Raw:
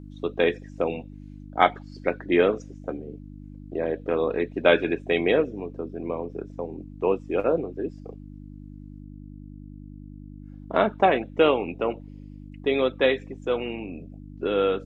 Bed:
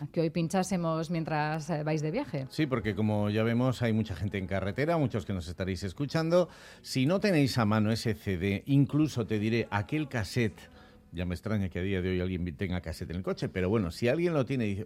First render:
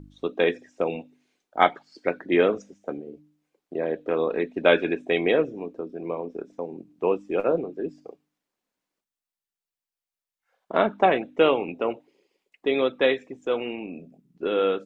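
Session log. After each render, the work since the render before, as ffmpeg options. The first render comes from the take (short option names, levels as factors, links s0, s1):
-af "bandreject=f=50:t=h:w=4,bandreject=f=100:t=h:w=4,bandreject=f=150:t=h:w=4,bandreject=f=200:t=h:w=4,bandreject=f=250:t=h:w=4,bandreject=f=300:t=h:w=4"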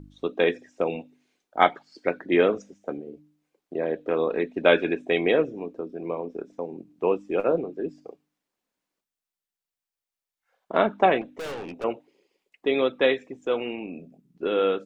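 -filter_complex "[0:a]asettb=1/sr,asplit=3[s0][s1][s2];[s0]atrim=end=11.214[s3];[s1]atrim=start=11.21:end=11.84,asetpts=PTS-STARTPTS,afade=t=in:d=0.004:c=qsin,afade=t=out:st=0.626:d=0.004:c=qsin,aeval=exprs='(tanh(39.8*val(0)+0.15)-tanh(0.15))/39.8':c=same[s4];[s2]atrim=start=11.836[s5];[s3][s4]acrossfade=d=0.004:c1=hsin:c2=qsin[s6];[s6][s5]acrossfade=d=0.004:c1=qsin:c2=hsin"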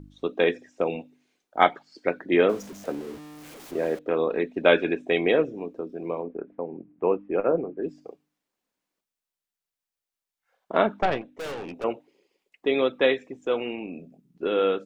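-filter_complex "[0:a]asettb=1/sr,asplit=3[s0][s1][s2];[s0]atrim=end=2.494[s3];[s1]atrim=start=2.49:end=3.99,asetpts=PTS-STARTPTS,afade=t=in:d=0.004:c=qsin,afade=t=out:st=1.496:d=0.004:c=qsin,aeval=exprs='val(0)+0.5*0.0119*sgn(val(0))':c=same[s4];[s2]atrim=start=3.986[s5];[s3][s4]acrossfade=d=0.004:c1=hsin:c2=qsin[s6];[s6][s5]acrossfade=d=0.004:c1=qsin:c2=hsin,asettb=1/sr,asplit=3[s7][s8][s9];[s7]atrim=end=6.224[s10];[s8]atrim=start=6.22:end=7.83,asetpts=PTS-STARTPTS,afade=t=in:d=0.004:c=qsin,afade=t=out:st=1.606:d=0.004:c=qsin,lowpass=f=2200:w=0.5412,lowpass=f=2200:w=1.3066[s11];[s9]atrim=start=7.826[s12];[s10][s11]acrossfade=d=0.004:c1=hsin:c2=qsin[s13];[s13][s12]acrossfade=d=0.004:c1=qsin:c2=hsin,asettb=1/sr,asplit=3[s14][s15][s16];[s14]atrim=end=10.994[s17];[s15]atrim=start=10.99:end=11.4,asetpts=PTS-STARTPTS,afade=t=in:d=0.004:c=qsin,afade=t=out:st=0.406:d=0.004:c=qsin,aeval=exprs='(tanh(5.01*val(0)+0.8)-tanh(0.8))/5.01':c=same[s18];[s16]atrim=start=11.396[s19];[s17][s18]acrossfade=d=0.004:c1=hsin:c2=qsin[s20];[s20][s19]acrossfade=d=0.004:c1=qsin:c2=hsin"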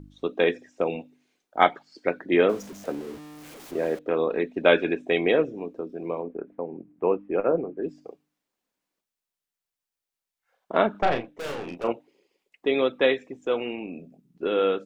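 -filter_complex "[0:a]asettb=1/sr,asplit=3[s0][s1][s2];[s0]atrim=end=10.914[s3];[s1]atrim=start=10.91:end=11.92,asetpts=PTS-STARTPTS,afade=t=in:d=0.004:c=qsin,afade=t=out:st=1.006:d=0.004:c=qsin,asplit=2[s4][s5];[s5]adelay=34,volume=0.562[s6];[s4][s6]amix=inputs=2:normalize=0,atrim=end_sample=44541[s7];[s2]atrim=start=11.916[s8];[s3][s7]acrossfade=d=0.004:c1=hsin:c2=qsin[s9];[s9][s8]acrossfade=d=0.004:c1=qsin:c2=hsin"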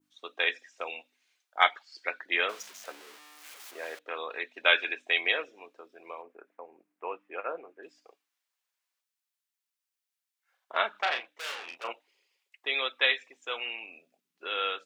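-af "highpass=1200,adynamicequalizer=threshold=0.00631:dfrequency=3500:dqfactor=0.71:tfrequency=3500:tqfactor=0.71:attack=5:release=100:ratio=0.375:range=2.5:mode=boostabove:tftype=bell"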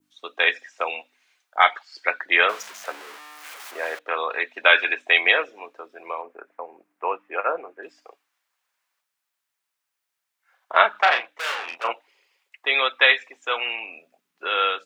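-filter_complex "[0:a]acrossover=split=590|2100|6500[s0][s1][s2][s3];[s1]dynaudnorm=f=170:g=5:m=2.51[s4];[s0][s4][s2][s3]amix=inputs=4:normalize=0,alimiter=level_in=1.88:limit=0.891:release=50:level=0:latency=1"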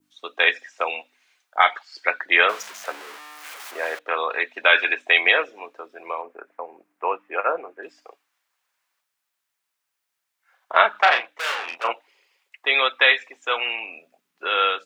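-af "volume=1.19,alimiter=limit=0.794:level=0:latency=1"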